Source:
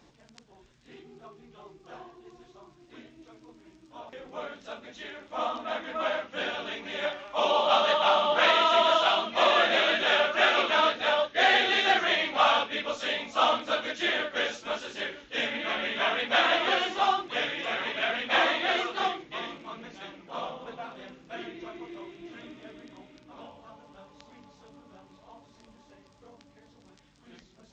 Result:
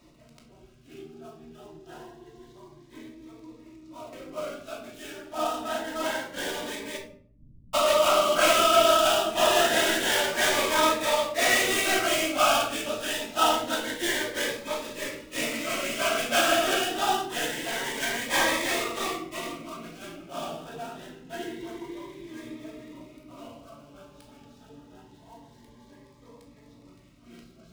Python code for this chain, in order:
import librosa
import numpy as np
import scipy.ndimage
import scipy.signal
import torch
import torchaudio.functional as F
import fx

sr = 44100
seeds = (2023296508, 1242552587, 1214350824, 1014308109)

y = fx.dead_time(x, sr, dead_ms=0.087)
y = fx.cheby2_lowpass(y, sr, hz=610.0, order=4, stop_db=70, at=(6.96, 7.73), fade=0.02)
y = fx.room_shoebox(y, sr, seeds[0], volume_m3=680.0, walls='furnished', distance_m=2.8)
y = fx.notch_cascade(y, sr, direction='rising', hz=0.26)